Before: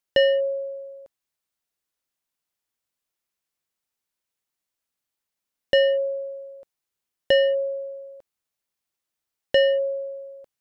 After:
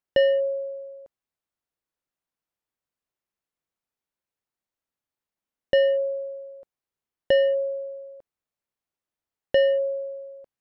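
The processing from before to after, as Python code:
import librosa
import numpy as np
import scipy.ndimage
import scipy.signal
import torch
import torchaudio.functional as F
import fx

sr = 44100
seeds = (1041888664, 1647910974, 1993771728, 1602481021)

y = fx.high_shelf(x, sr, hz=2300.0, db=-11.0)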